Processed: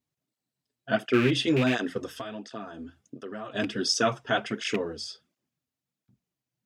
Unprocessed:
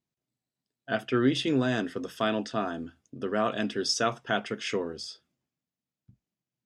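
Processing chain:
loose part that buzzes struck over −28 dBFS, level −21 dBFS
0:02.12–0:03.55: downward compressor 4 to 1, threshold −39 dBFS, peak gain reduction 14.5 dB
through-zero flanger with one copy inverted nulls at 1.4 Hz, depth 6.2 ms
level +5 dB

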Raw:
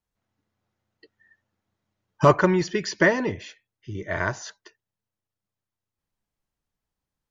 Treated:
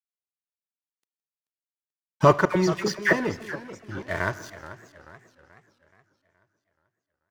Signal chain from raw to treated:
0:02.45–0:03.13: all-pass dispersion lows, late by 102 ms, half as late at 1,500 Hz
dead-zone distortion −40.5 dBFS
on a send: single-tap delay 165 ms −22 dB
on the sum: four-comb reverb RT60 1.6 s, combs from 26 ms, DRR 19.5 dB
feedback echo with a swinging delay time 429 ms, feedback 47%, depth 199 cents, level −14.5 dB

